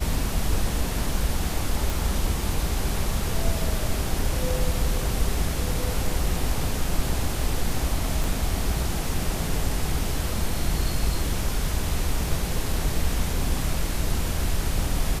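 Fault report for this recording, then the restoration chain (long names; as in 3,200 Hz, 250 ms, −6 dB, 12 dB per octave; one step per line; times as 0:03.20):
0:01.90: click
0:08.24: click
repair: click removal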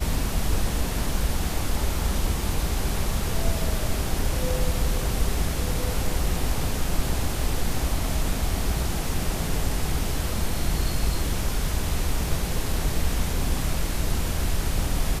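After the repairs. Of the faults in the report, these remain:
0:08.24: click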